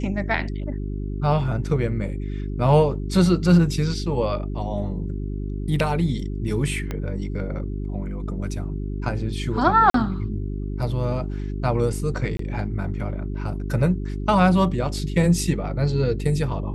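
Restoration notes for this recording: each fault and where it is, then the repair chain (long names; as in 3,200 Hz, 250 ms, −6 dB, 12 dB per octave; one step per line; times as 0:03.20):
mains hum 50 Hz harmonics 8 −28 dBFS
0:06.91: click −15 dBFS
0:09.90–0:09.94: drop-out 43 ms
0:12.37–0:12.39: drop-out 23 ms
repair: click removal
hum removal 50 Hz, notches 8
repair the gap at 0:09.90, 43 ms
repair the gap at 0:12.37, 23 ms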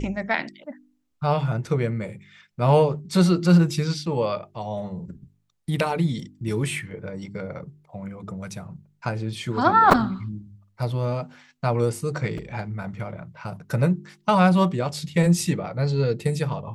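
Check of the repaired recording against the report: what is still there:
0:06.91: click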